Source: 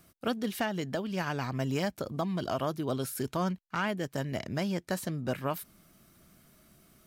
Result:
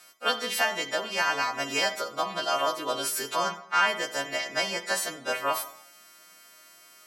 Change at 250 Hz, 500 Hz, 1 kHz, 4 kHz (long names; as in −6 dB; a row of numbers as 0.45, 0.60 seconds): −9.0, +2.5, +8.5, +13.0 decibels